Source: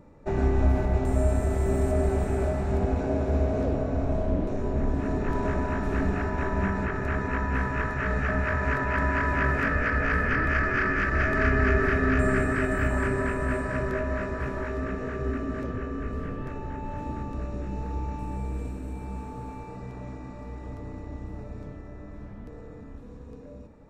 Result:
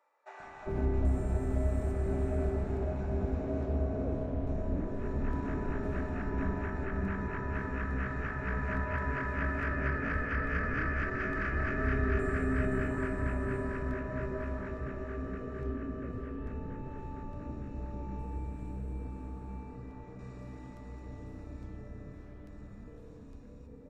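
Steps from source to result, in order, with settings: treble shelf 2.7 kHz -8 dB, from 20.19 s +4 dB; bands offset in time highs, lows 400 ms, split 750 Hz; trim -6.5 dB

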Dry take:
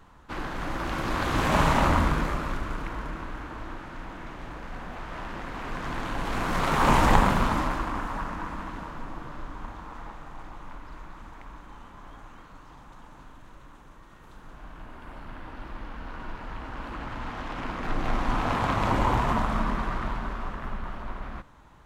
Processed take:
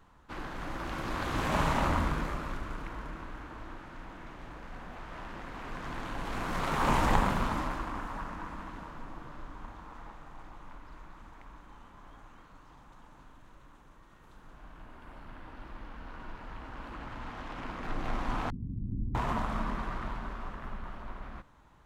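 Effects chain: 18.50–19.15 s: inverse Chebyshev low-pass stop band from 630 Hz, stop band 50 dB; trim -6.5 dB

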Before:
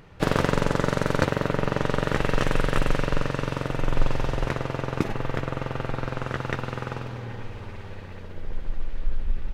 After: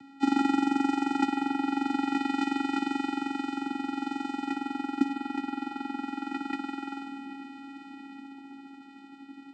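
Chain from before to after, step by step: tilt shelf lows -4 dB; upward compressor, threshold -43 dBFS; vocoder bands 8, square 275 Hz; on a send: two-band feedback delay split 540 Hz, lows 703 ms, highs 158 ms, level -15 dB

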